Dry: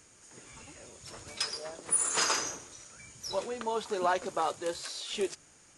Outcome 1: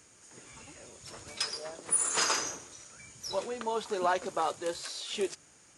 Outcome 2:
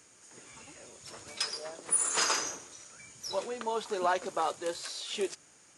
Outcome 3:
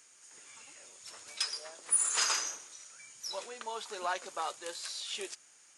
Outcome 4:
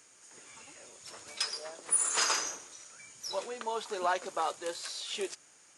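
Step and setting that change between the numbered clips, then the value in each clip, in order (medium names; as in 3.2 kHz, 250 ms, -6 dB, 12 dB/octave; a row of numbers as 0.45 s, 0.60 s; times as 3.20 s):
high-pass, cutoff frequency: 56 Hz, 180 Hz, 1.5 kHz, 550 Hz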